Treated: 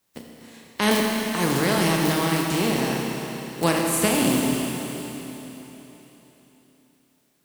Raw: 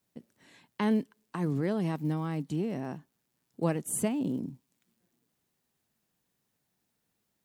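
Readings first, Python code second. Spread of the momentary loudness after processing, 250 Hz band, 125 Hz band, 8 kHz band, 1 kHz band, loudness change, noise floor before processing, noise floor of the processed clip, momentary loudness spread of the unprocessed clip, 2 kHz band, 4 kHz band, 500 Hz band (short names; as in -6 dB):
15 LU, +8.0 dB, +6.5 dB, +13.0 dB, +14.0 dB, +9.0 dB, -80 dBFS, -66 dBFS, 12 LU, +18.5 dB, +23.5 dB, +10.5 dB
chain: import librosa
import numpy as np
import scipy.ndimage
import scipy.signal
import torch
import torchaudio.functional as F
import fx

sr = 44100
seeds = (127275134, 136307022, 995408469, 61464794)

y = fx.spec_flatten(x, sr, power=0.56)
y = fx.hum_notches(y, sr, base_hz=50, count=3)
y = fx.rev_schroeder(y, sr, rt60_s=3.7, comb_ms=27, drr_db=-1.0)
y = y * librosa.db_to_amplitude(6.5)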